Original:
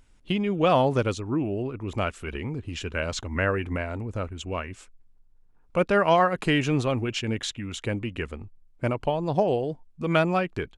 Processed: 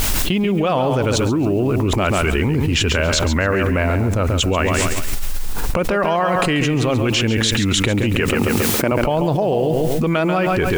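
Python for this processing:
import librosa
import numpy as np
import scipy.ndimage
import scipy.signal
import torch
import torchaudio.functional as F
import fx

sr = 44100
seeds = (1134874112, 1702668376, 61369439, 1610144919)

p1 = fx.recorder_agc(x, sr, target_db=-16.0, rise_db_per_s=12.0, max_gain_db=30)
p2 = fx.highpass(p1, sr, hz=200.0, slope=12, at=(8.2, 8.92))
p3 = fx.quant_dither(p2, sr, seeds[0], bits=8, dither='triangular')
p4 = p2 + (p3 * librosa.db_to_amplitude(-9.5))
p5 = fx.echo_feedback(p4, sr, ms=138, feedback_pct=29, wet_db=-9.5)
p6 = fx.env_flatten(p5, sr, amount_pct=100)
y = p6 * librosa.db_to_amplitude(-3.0)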